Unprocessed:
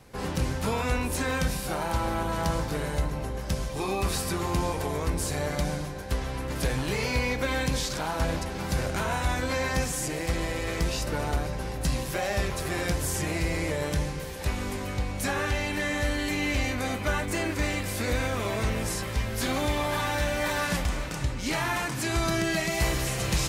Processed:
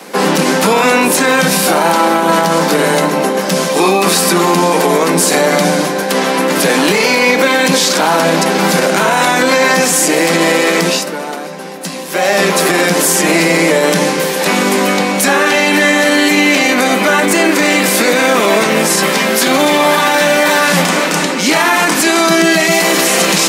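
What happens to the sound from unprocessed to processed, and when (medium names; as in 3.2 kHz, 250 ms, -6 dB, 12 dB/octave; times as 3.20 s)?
10.69–12.51 s: dip -13.5 dB, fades 0.44 s
whole clip: steep high-pass 170 Hz 96 dB/octave; peaking EQ 230 Hz -5 dB 0.3 oct; loudness maximiser +24.5 dB; trim -1 dB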